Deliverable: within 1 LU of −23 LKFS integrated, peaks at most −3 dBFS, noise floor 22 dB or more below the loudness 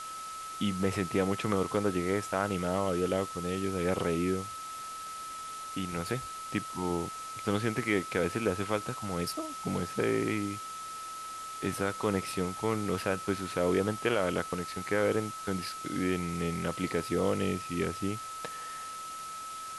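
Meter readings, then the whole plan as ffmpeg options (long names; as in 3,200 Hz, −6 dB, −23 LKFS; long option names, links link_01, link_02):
interfering tone 1,300 Hz; level of the tone −39 dBFS; background noise floor −41 dBFS; target noise floor −55 dBFS; integrated loudness −32.5 LKFS; sample peak −13.0 dBFS; target loudness −23.0 LKFS
→ -af "bandreject=frequency=1300:width=30"
-af "afftdn=noise_reduction=14:noise_floor=-41"
-af "volume=9.5dB"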